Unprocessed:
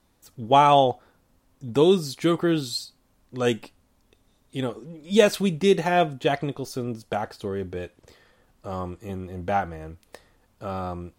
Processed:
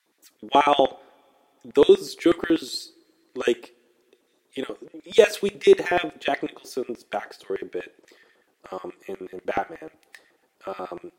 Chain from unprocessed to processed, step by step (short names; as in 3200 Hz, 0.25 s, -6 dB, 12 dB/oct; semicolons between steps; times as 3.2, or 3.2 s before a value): LFO high-pass square 8.2 Hz 350–1900 Hz; two-slope reverb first 0.43 s, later 3.2 s, from -22 dB, DRR 19 dB; gain -2 dB